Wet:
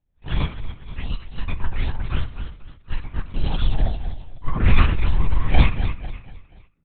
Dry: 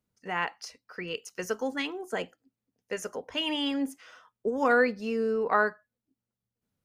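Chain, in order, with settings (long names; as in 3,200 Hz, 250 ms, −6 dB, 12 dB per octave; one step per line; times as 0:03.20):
full-wave rectification
reverb reduction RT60 0.69 s
pitch shifter +3.5 semitones
on a send: repeating echo 245 ms, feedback 40%, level −10 dB
on the sum: rectangular room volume 39 cubic metres, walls mixed, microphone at 1.1 metres
linear-prediction vocoder at 8 kHz whisper
level −8.5 dB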